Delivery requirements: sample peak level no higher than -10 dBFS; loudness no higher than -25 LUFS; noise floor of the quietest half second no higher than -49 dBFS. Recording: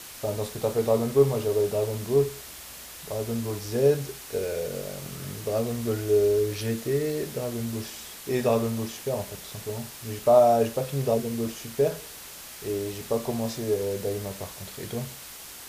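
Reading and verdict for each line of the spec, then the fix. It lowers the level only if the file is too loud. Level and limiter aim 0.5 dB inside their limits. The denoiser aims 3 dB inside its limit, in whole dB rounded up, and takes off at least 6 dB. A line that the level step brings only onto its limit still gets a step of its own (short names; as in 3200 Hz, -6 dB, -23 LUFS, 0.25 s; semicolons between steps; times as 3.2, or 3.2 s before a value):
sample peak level -6.5 dBFS: fail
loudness -27.0 LUFS: OK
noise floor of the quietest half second -43 dBFS: fail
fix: denoiser 9 dB, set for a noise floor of -43 dBFS; limiter -10.5 dBFS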